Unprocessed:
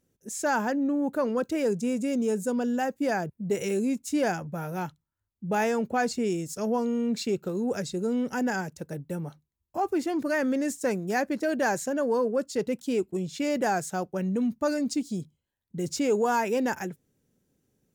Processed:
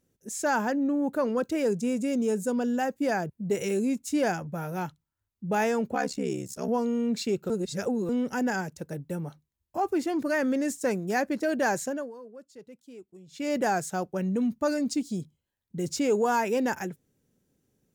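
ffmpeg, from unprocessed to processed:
ffmpeg -i in.wav -filter_complex "[0:a]asettb=1/sr,asplit=3[link_01][link_02][link_03];[link_01]atrim=end=5.944[link_04];[link_02]atrim=start=5.94:end=6.69,asetpts=PTS-STARTPTS,afade=type=in:duration=0.004:curve=qsin,afade=type=out:start_time=0.746:duration=0.004:curve=qsin,aeval=exprs='val(0)*sin(2*PI*34*n/s)':channel_layout=same[link_05];[link_03]atrim=start=6.686[link_06];[link_04][link_05]acrossfade=duration=0.004:curve1=hsin:curve2=qsin[link_07];[link_07][link_06]acrossfade=duration=0.004:curve1=qsin:curve2=hsin,asplit=5[link_08][link_09][link_10][link_11][link_12];[link_08]atrim=end=7.502[link_13];[link_09]atrim=start=7.498:end=8.092,asetpts=PTS-STARTPTS,areverse[link_14];[link_10]atrim=start=8.088:end=12.12,asetpts=PTS-STARTPTS,afade=type=out:start_time=3.752:duration=0.28:silence=0.105925[link_15];[link_11]atrim=start=12.12:end=13.26,asetpts=PTS-STARTPTS,volume=-19.5dB[link_16];[link_12]atrim=start=13.26,asetpts=PTS-STARTPTS,afade=type=in:duration=0.28:silence=0.105925[link_17];[link_13][link_14]acrossfade=duration=0.004:curve1=hsin:curve2=hsin[link_18];[link_15][link_16][link_17]concat=n=3:v=0:a=1[link_19];[link_18][link_19]acrossfade=duration=0.004:curve1=hsin:curve2=hsin" out.wav

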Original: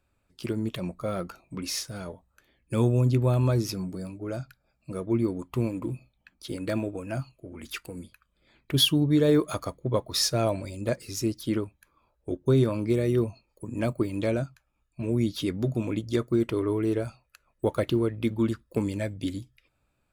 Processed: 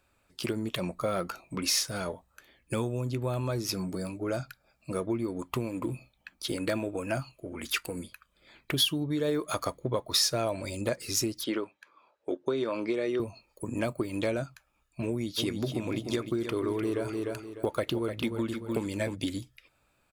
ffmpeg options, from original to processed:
ffmpeg -i in.wav -filter_complex "[0:a]asettb=1/sr,asplit=3[link_01][link_02][link_03];[link_01]atrim=end=11.444[link_04];[link_02]atrim=start=11.44:end=13.2,asetpts=PTS-STARTPTS,afade=type=in:duration=0.004:curve=qsin,afade=type=out:start_time=1.756:duration=0.004:curve=qsin,highpass=310,lowpass=4600[link_05];[link_03]atrim=start=13.196[link_06];[link_04][link_05]acrossfade=duration=0.004:curve1=hsin:curve2=qsin[link_07];[link_07][link_06]acrossfade=duration=0.004:curve1=qsin:curve2=hsin,asplit=3[link_08][link_09][link_10];[link_08]afade=type=out:start_time=15.37:duration=0.02[link_11];[link_09]aecho=1:1:300|600|900:0.355|0.0993|0.0278,afade=type=in:start_time=15.37:duration=0.02,afade=type=out:start_time=19.14:duration=0.02[link_12];[link_10]afade=type=in:start_time=19.14:duration=0.02[link_13];[link_11][link_12][link_13]amix=inputs=3:normalize=0,acompressor=threshold=-30dB:ratio=6,lowshelf=frequency=330:gain=-9,volume=7.5dB" out.wav

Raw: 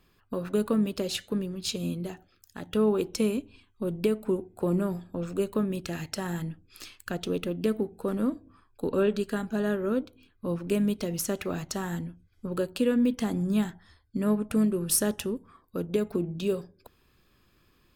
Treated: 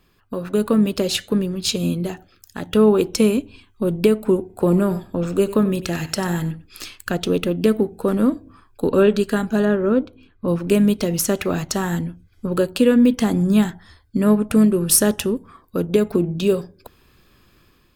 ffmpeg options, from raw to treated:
ffmpeg -i in.wav -filter_complex "[0:a]asettb=1/sr,asplit=3[link_01][link_02][link_03];[link_01]atrim=end=4.404[link_04];[link_02]atrim=start=4.4:end=6.83,asetpts=PTS-STARTPTS,afade=type=in:duration=0.004:curve=qsin,afade=type=out:start_time=2.426:duration=0.004:curve=qsin,aecho=1:1:94:0.178,atrim=end_sample=107163[link_05];[link_03]atrim=start=6.826[link_06];[link_04][link_05]acrossfade=duration=0.004:curve1=hsin:curve2=qsin[link_07];[link_07][link_06]acrossfade=duration=0.004:curve1=qsin:curve2=hsin,asettb=1/sr,asplit=3[link_08][link_09][link_10];[link_08]atrim=end=9.654[link_11];[link_09]atrim=start=9.65:end=10.48,asetpts=PTS-STARTPTS,afade=type=in:duration=0.004:curve=qsin,afade=type=out:start_time=0.826:duration=0.004:curve=qsin,aemphasis=mode=reproduction:type=75kf[link_12];[link_10]atrim=start=10.476[link_13];[link_11][link_12]acrossfade=duration=0.004:curve1=hsin:curve2=qsin[link_14];[link_14][link_13]acrossfade=duration=0.004:curve1=qsin:curve2=hsin,dynaudnorm=framelen=440:gausssize=3:maxgain=5.5dB,volume=4.5dB" out.wav

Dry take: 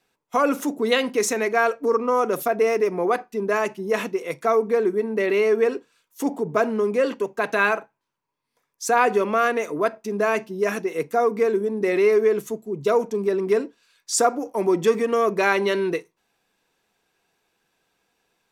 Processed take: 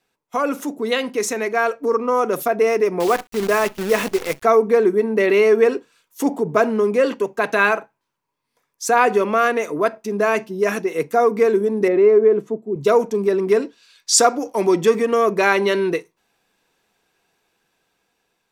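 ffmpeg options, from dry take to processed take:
ffmpeg -i in.wav -filter_complex "[0:a]asettb=1/sr,asplit=3[link_01][link_02][link_03];[link_01]atrim=end=3.004[link_04];[link_02]atrim=start=3:end=4.43,asetpts=PTS-STARTPTS,afade=type=in:duration=0.004:curve=qsin,afade=type=out:start_time=1.426:duration=0.004:curve=qsin,acrusher=bits=6:dc=4:mix=0:aa=0.000001[link_05];[link_03]atrim=start=4.426[link_06];[link_04][link_05]acrossfade=duration=0.004:curve1=hsin:curve2=qsin[link_07];[link_07][link_06]acrossfade=duration=0.004:curve1=qsin:curve2=hsin,asettb=1/sr,asplit=3[link_08][link_09][link_10];[link_08]atrim=end=11.884[link_11];[link_09]atrim=start=11.88:end=12.76,asetpts=PTS-STARTPTS,afade=type=in:duration=0.004:curve=qsin,afade=type=out:start_time=0.876:duration=0.004:curve=qsin,bandpass=frequency=340:width_type=q:width=0.58[link_12];[link_10]atrim=start=12.756[link_13];[link_11][link_12]acrossfade=duration=0.004:curve1=hsin:curve2=qsin[link_14];[link_14][link_13]acrossfade=duration=0.004:curve1=qsin:curve2=hsin,asettb=1/sr,asplit=3[link_15][link_16][link_17];[link_15]atrim=end=13.624[link_18];[link_16]atrim=start=13.62:end=14.82,asetpts=PTS-STARTPTS,afade=type=in:duration=0.004:curve=qsin,afade=type=out:start_time=1.196:duration=0.004:curve=qsin,equalizer=frequency=4200:width_type=o:width=1.8:gain=8[link_19];[link_17]atrim=start=14.816[link_20];[link_18][link_19]acrossfade=duration=0.004:curve1=hsin:curve2=qsin[link_21];[link_21][link_20]acrossfade=duration=0.004:curve1=qsin:curve2=hsin,dynaudnorm=framelen=730:gausssize=5:maxgain=11.5dB,volume=-1dB" out.wav

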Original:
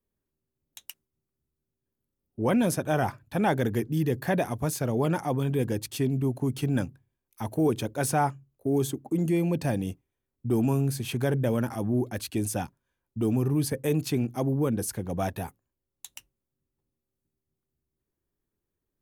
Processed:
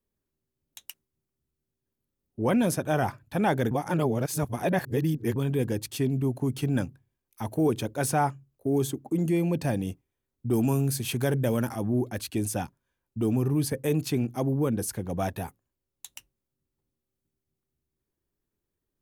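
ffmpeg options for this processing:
ffmpeg -i in.wav -filter_complex "[0:a]asettb=1/sr,asplit=3[link_01][link_02][link_03];[link_01]atrim=end=10.534[link_04];[link_02]atrim=start=10.53:end=11.73,asetpts=PTS-STARTPTS,afade=type=in:duration=0.004:curve=qsin,afade=type=out:start_time=1.196:duration=0.004:curve=qsin,highshelf=frequency=4000:gain=6.5[link_05];[link_03]atrim=start=11.726[link_06];[link_04][link_05]acrossfade=duration=0.004:curve1=hsin:curve2=qsin[link_07];[link_07][link_06]acrossfade=duration=0.004:curve1=qsin:curve2=hsin,asplit=3[link_08][link_09][link_10];[link_08]atrim=end=3.712[link_11];[link_09]atrim=start=3.708:end=5.362,asetpts=PTS-STARTPTS,areverse[link_12];[link_10]atrim=start=5.358[link_13];[link_11][link_12]acrossfade=duration=0.004:curve1=hsin:curve2=hsin[link_14];[link_14][link_13]acrossfade=duration=0.004:curve1=hsin:curve2=hsin" out.wav

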